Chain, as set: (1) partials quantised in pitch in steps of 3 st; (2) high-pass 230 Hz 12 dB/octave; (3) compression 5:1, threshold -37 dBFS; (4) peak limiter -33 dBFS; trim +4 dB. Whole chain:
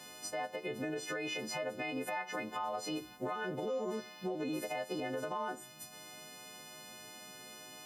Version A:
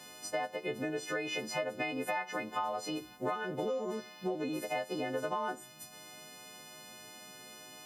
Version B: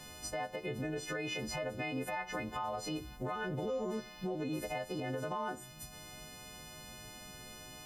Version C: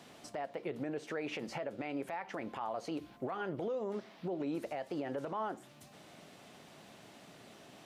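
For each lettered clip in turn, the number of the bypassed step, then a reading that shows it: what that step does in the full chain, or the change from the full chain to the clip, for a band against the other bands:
4, crest factor change +5.0 dB; 2, 125 Hz band +7.5 dB; 1, 8 kHz band -11.0 dB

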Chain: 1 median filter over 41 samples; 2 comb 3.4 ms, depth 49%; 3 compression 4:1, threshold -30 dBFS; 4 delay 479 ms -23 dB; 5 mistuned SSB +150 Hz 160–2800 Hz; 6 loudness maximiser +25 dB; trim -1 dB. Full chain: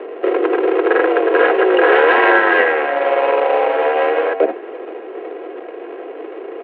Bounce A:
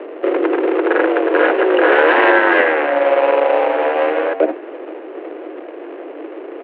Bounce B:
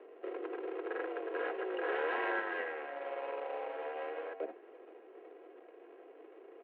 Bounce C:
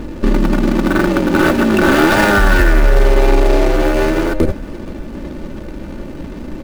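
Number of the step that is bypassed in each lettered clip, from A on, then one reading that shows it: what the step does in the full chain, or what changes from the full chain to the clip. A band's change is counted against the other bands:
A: 2, 250 Hz band +2.5 dB; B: 6, crest factor change +3.5 dB; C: 5, 250 Hz band +10.5 dB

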